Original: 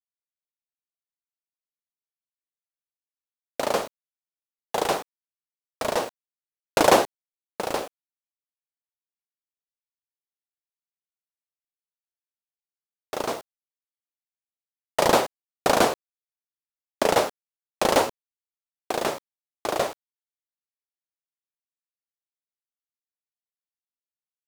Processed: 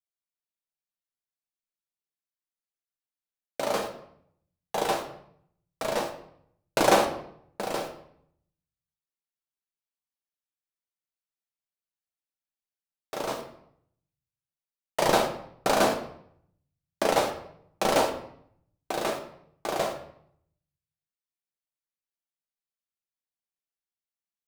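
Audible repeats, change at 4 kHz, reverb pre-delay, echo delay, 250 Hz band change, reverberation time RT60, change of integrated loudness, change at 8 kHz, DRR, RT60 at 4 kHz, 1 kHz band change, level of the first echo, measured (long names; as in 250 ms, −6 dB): no echo audible, −3.0 dB, 5 ms, no echo audible, −2.0 dB, 0.65 s, −3.0 dB, −3.5 dB, 2.0 dB, 0.50 s, −3.0 dB, no echo audible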